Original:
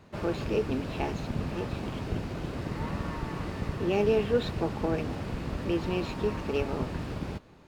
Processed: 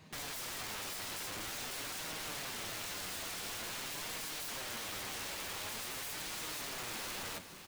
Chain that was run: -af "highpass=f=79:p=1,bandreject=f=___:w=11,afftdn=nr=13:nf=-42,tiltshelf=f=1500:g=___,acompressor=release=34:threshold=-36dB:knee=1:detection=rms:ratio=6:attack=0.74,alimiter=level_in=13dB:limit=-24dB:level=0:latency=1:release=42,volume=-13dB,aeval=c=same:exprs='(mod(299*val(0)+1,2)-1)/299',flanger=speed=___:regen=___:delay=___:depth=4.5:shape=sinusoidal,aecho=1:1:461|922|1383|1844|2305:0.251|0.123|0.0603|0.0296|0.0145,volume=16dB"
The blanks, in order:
1400, -6.5, 0.47, 50, 6.3